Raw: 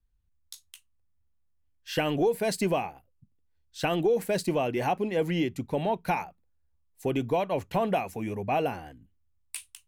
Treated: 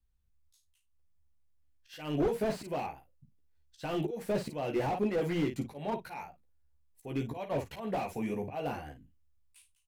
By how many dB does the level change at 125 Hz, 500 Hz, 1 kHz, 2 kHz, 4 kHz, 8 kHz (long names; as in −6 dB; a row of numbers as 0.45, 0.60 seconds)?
−4.5, −6.5, −8.0, −8.5, −9.0, −12.0 decibels